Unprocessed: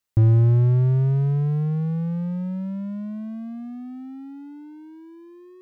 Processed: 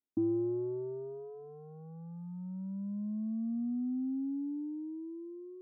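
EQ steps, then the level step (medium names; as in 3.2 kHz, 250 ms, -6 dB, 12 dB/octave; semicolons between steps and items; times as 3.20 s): ladder band-pass 380 Hz, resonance 20%; peaking EQ 250 Hz +11.5 dB 1.5 oct; static phaser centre 530 Hz, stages 6; +2.0 dB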